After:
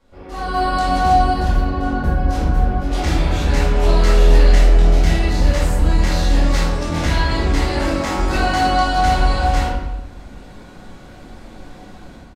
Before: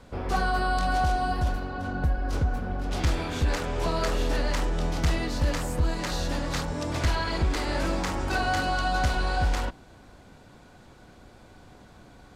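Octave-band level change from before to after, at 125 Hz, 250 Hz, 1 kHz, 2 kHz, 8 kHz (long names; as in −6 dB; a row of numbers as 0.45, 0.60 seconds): +10.0, +9.5, +10.0, +6.5, +6.5 decibels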